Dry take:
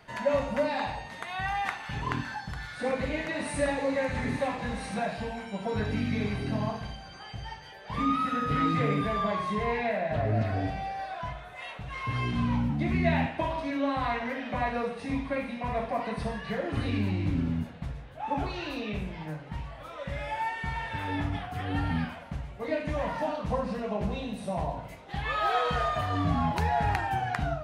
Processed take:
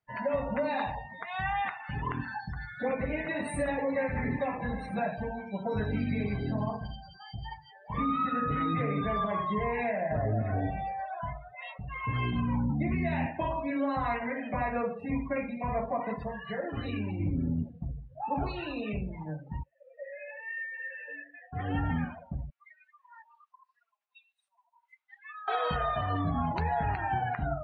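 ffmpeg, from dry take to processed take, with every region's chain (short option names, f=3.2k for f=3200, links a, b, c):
-filter_complex "[0:a]asettb=1/sr,asplit=3[a][b][c];[a]atrim=end=16.164[d];[b]atrim=start=16.16:end=17.2,asetpts=PTS-STARTPTS,afade=t=in:d=0.004:c=qsin,afade=t=out:st=1.036:d=0.004:c=qsin,lowshelf=f=340:g=-7,bandreject=f=2.2k:w=19[e];[c]atrim=start=17.196[f];[d][e]acrossfade=d=0.004:c1=hsin:c2=qsin[g];[g][f]acrossfade=d=0.004:c1=qsin:c2=hsin,asettb=1/sr,asplit=3[h][i][j];[h]atrim=end=19.634[k];[i]atrim=start=19.63:end=21.53,asetpts=PTS-STARTPTS,afade=t=in:d=0.004:c=qsin,afade=t=out:st=1.896:d=0.004:c=qsin,equalizer=f=2k:t=o:w=1.9:g=9,volume=24.5dB,asoftclip=hard,volume=-24.5dB,asplit=3[l][m][n];[l]bandpass=f=530:t=q:w=8,volume=0dB[o];[m]bandpass=f=1.84k:t=q:w=8,volume=-6dB[p];[n]bandpass=f=2.48k:t=q:w=8,volume=-9dB[q];[o][p][q]amix=inputs=3:normalize=0[r];[j]atrim=start=21.526[s];[k][r]acrossfade=d=0.004:c1=hsin:c2=qsin[t];[t][s]acrossfade=d=0.004:c1=qsin:c2=hsin,asettb=1/sr,asplit=3[u][v][w];[u]atrim=end=22.504[x];[v]atrim=start=22.5:end=25.48,asetpts=PTS-STARTPTS,afade=t=in:d=0.004:c=qsin,afade=t=out:st=2.976:d=0.004:c=qsin,acompressor=threshold=-37dB:ratio=16:attack=3.2:release=140:knee=1:detection=peak,highpass=f=1.1k:w=0.5412,highpass=f=1.1k:w=1.3066[y];[w]atrim=start=25.476[z];[x][y]acrossfade=d=0.004:c1=hsin:c2=qsin[aa];[aa][z]acrossfade=d=0.004:c1=qsin:c2=hsin,afftdn=nr=34:nf=-38,alimiter=limit=-21dB:level=0:latency=1:release=110"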